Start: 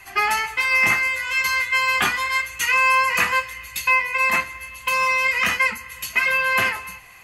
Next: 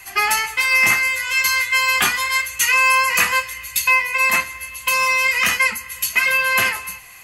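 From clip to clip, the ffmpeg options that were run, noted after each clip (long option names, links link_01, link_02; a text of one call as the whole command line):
ffmpeg -i in.wav -af "highshelf=frequency=4100:gain=11.5" out.wav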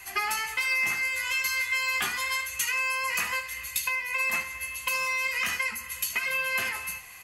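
ffmpeg -i in.wav -filter_complex "[0:a]acompressor=threshold=-21dB:ratio=6,asplit=2[link_01][link_02];[link_02]aecho=0:1:13|76:0.299|0.211[link_03];[link_01][link_03]amix=inputs=2:normalize=0,volume=-5dB" out.wav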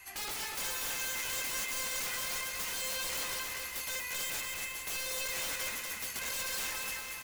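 ffmpeg -i in.wav -af "aeval=exprs='(mod(18.8*val(0)+1,2)-1)/18.8':channel_layout=same,acrusher=bits=8:mode=log:mix=0:aa=0.000001,aecho=1:1:240|420|555|656.2|732.2:0.631|0.398|0.251|0.158|0.1,volume=-7.5dB" out.wav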